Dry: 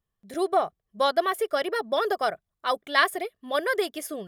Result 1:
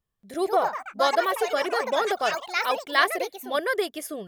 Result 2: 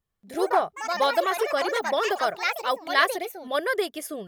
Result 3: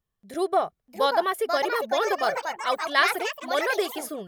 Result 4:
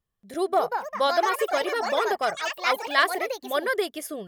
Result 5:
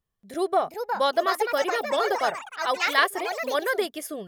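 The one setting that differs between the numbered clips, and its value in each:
delay with pitch and tempo change per echo, delay time: 198, 88, 696, 298, 471 milliseconds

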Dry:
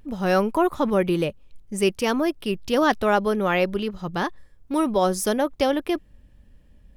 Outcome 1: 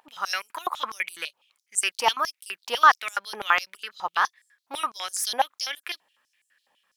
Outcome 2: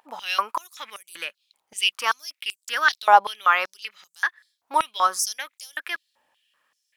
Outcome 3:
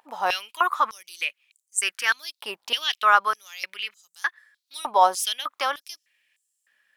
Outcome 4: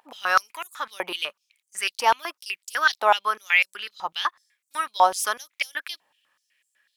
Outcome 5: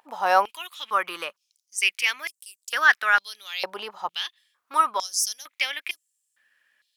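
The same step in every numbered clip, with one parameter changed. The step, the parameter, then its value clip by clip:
high-pass on a step sequencer, speed: 12, 5.2, 3.3, 8, 2.2 Hertz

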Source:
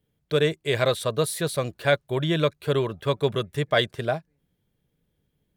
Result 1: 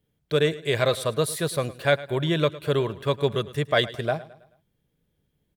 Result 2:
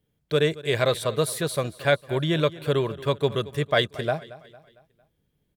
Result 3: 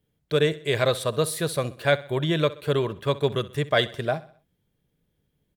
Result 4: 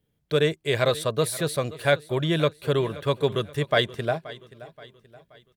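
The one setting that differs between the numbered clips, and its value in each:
repeating echo, delay time: 108, 227, 64, 527 milliseconds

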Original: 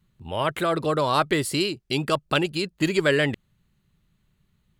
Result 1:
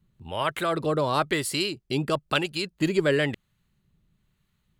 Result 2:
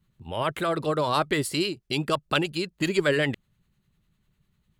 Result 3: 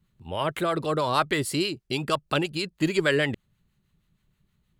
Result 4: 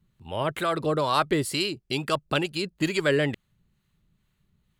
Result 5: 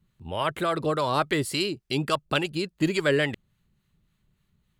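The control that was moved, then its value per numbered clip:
two-band tremolo in antiphase, speed: 1, 10, 6.3, 2.2, 3.5 Hertz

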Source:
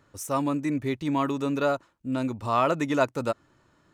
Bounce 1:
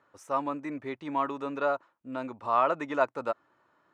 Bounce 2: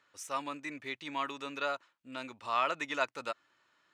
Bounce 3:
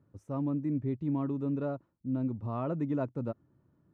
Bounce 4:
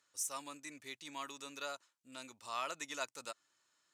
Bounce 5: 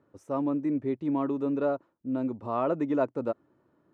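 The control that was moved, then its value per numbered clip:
resonant band-pass, frequency: 1,000, 2,700, 140, 7,400, 360 Hertz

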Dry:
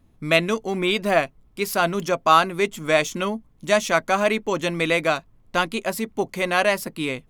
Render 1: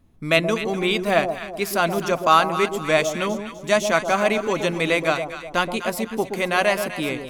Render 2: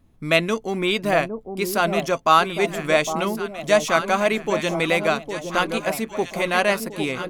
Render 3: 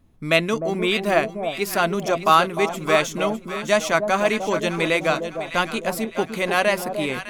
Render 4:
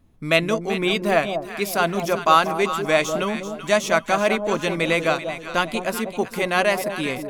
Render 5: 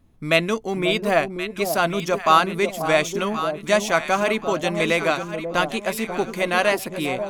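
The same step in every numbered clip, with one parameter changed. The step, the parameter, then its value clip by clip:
delay that swaps between a low-pass and a high-pass, delay time: 125, 808, 303, 193, 538 milliseconds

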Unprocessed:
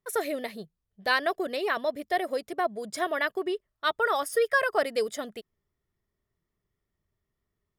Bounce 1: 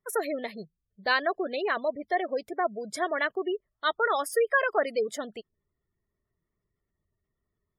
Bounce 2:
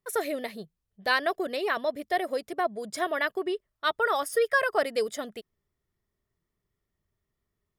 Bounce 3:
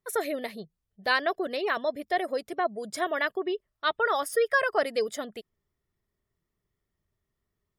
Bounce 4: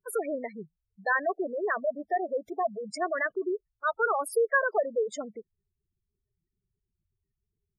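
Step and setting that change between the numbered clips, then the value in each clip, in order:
gate on every frequency bin, under each frame's peak: −25, −60, −40, −10 decibels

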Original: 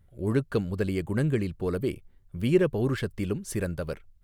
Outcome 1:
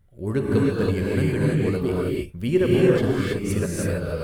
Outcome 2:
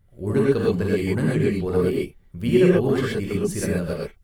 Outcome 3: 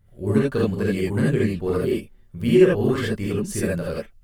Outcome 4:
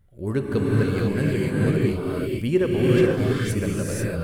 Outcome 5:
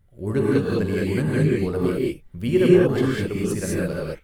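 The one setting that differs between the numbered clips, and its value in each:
reverb whose tail is shaped and stops, gate: 350, 150, 100, 520, 230 milliseconds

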